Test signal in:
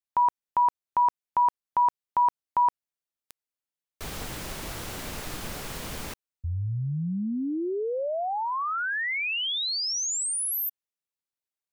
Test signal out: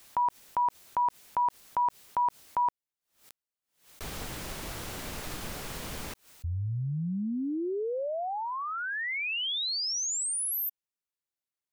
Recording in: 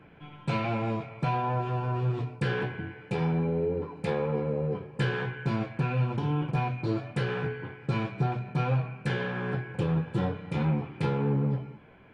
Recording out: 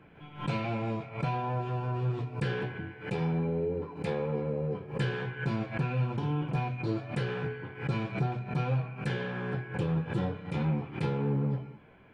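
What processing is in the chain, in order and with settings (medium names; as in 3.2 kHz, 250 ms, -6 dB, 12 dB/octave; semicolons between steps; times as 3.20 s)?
dynamic bell 1.2 kHz, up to -3 dB, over -36 dBFS, Q 1; swell ahead of each attack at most 140 dB/s; trim -2.5 dB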